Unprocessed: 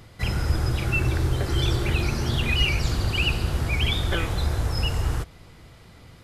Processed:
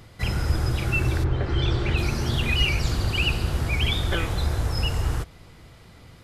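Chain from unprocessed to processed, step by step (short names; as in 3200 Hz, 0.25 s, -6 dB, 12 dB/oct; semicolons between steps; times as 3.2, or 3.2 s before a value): 1.23–1.96 LPF 2200 Hz -> 5500 Hz 12 dB/oct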